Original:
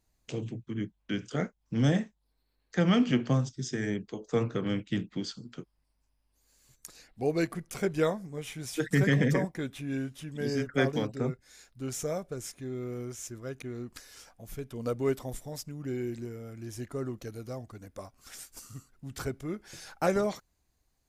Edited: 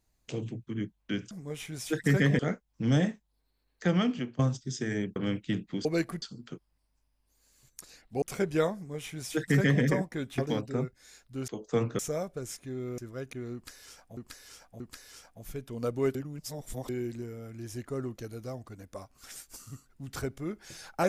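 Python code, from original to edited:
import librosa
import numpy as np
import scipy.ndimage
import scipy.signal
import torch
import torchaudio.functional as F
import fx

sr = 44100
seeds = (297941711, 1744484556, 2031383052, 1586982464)

y = fx.edit(x, sr, fx.fade_out_to(start_s=2.77, length_s=0.54, floor_db=-20.0),
    fx.move(start_s=4.08, length_s=0.51, to_s=11.94),
    fx.move(start_s=7.28, length_s=0.37, to_s=5.28),
    fx.duplicate(start_s=8.18, length_s=1.08, to_s=1.31),
    fx.cut(start_s=9.81, length_s=1.03),
    fx.cut(start_s=12.93, length_s=0.34),
    fx.repeat(start_s=13.83, length_s=0.63, count=3),
    fx.reverse_span(start_s=15.18, length_s=0.74), tone=tone)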